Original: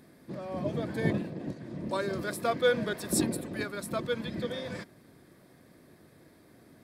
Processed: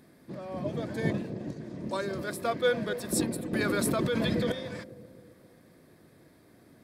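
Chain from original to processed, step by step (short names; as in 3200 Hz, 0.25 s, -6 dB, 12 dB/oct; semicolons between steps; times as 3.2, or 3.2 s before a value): 0.77–2.05 bell 6300 Hz +5.5 dB 0.63 oct; analogue delay 0.263 s, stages 1024, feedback 53%, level -11 dB; 3.53–4.52 fast leveller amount 100%; gain -1 dB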